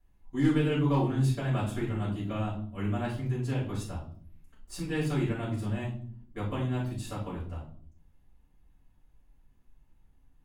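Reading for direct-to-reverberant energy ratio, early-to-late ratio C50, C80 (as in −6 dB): −9.0 dB, 6.5 dB, 10.5 dB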